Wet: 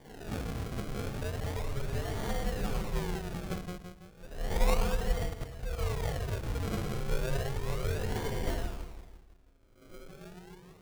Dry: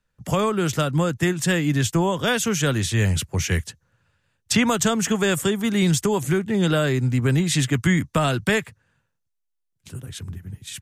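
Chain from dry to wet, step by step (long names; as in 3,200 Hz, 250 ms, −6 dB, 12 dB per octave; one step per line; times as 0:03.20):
peak hold with a rise ahead of every peak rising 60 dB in 0.93 s
Butterworth low-pass 2,800 Hz 48 dB per octave
tuned comb filter 240 Hz, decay 0.26 s, harmonics all, mix 80%
hum removal 73.56 Hz, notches 3
ring modulation 270 Hz
flanger swept by the level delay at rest 10.5 ms, full sweep at −28.5 dBFS
low-shelf EQ 66 Hz +11 dB
echo with a time of its own for lows and highs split 470 Hz, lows 165 ms, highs 101 ms, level −4 dB
0:05.26–0:05.78: output level in coarse steps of 10 dB
0:08.46–0:10.09: comb filter 3.3 ms, depth 69%
sample-and-hold swept by an LFO 33×, swing 100% 0.33 Hz
level −3 dB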